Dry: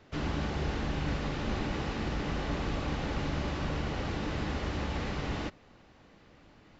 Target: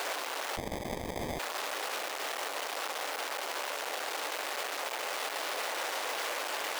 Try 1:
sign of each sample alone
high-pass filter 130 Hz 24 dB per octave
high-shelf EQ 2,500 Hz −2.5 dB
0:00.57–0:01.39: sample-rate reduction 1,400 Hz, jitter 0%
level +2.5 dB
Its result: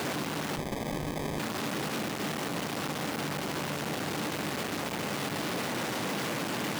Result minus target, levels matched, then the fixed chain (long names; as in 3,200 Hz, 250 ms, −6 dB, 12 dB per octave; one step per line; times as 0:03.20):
125 Hz band +11.0 dB
sign of each sample alone
high-pass filter 500 Hz 24 dB per octave
high-shelf EQ 2,500 Hz −2.5 dB
0:00.57–0:01.39: sample-rate reduction 1,400 Hz, jitter 0%
level +2.5 dB